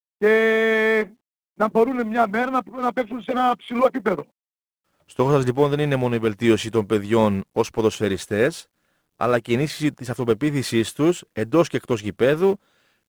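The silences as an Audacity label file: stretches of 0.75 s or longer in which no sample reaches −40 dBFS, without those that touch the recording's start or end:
4.230000	5.100000	silence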